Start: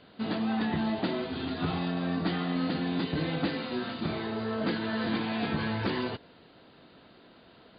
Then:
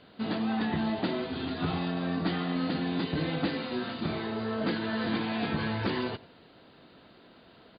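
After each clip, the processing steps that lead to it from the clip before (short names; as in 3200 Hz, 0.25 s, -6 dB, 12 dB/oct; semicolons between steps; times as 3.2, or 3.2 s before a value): outdoor echo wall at 16 m, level -20 dB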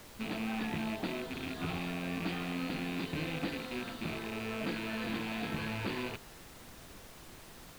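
rattling part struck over -37 dBFS, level -24 dBFS; added noise pink -45 dBFS; gain -7 dB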